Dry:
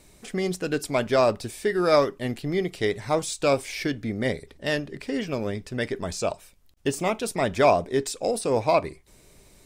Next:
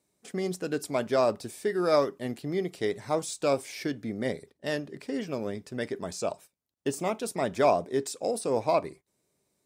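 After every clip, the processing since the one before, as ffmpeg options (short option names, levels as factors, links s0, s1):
-af "agate=range=0.178:threshold=0.00794:ratio=16:detection=peak,highpass=140,equalizer=f=2600:w=0.86:g=-5,volume=0.668"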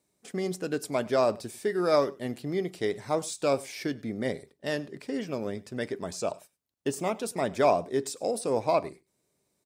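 -af "aecho=1:1:99:0.075"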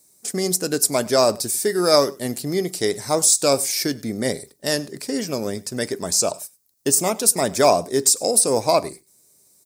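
-af "aexciter=amount=5.8:drive=3.7:freq=4400,volume=2.24"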